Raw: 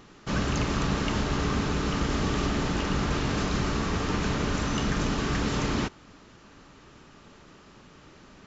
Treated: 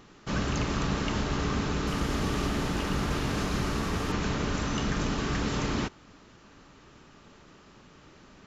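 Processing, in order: 1.87–4.12 s: one-bit delta coder 64 kbps, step -39 dBFS; trim -2 dB

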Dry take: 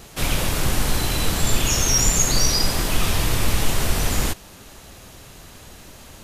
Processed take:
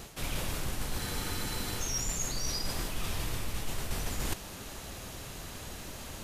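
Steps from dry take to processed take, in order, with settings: reverse; compression 8:1, threshold -30 dBFS, peak gain reduction 18 dB; reverse; spectral freeze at 1.01 s, 0.79 s

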